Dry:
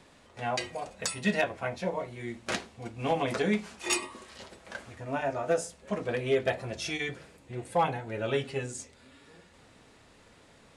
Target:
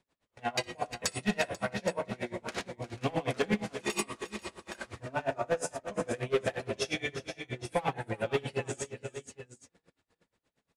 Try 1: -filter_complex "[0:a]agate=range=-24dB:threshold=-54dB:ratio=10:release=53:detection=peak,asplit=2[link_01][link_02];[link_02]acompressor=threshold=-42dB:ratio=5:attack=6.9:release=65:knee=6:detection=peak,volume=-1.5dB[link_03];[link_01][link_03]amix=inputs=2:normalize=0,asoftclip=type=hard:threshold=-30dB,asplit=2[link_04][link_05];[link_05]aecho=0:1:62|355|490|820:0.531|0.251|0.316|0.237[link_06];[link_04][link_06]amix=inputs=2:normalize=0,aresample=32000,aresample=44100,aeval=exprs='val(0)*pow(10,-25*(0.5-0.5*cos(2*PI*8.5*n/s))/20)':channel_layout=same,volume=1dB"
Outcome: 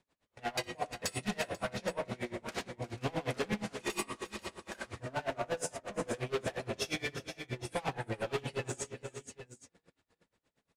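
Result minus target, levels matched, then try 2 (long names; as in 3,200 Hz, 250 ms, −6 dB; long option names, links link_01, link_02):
hard clipping: distortion +9 dB
-filter_complex "[0:a]agate=range=-24dB:threshold=-54dB:ratio=10:release=53:detection=peak,asplit=2[link_01][link_02];[link_02]acompressor=threshold=-42dB:ratio=5:attack=6.9:release=65:knee=6:detection=peak,volume=-1.5dB[link_03];[link_01][link_03]amix=inputs=2:normalize=0,asoftclip=type=hard:threshold=-22dB,asplit=2[link_04][link_05];[link_05]aecho=0:1:62|355|490|820:0.531|0.251|0.316|0.237[link_06];[link_04][link_06]amix=inputs=2:normalize=0,aresample=32000,aresample=44100,aeval=exprs='val(0)*pow(10,-25*(0.5-0.5*cos(2*PI*8.5*n/s))/20)':channel_layout=same,volume=1dB"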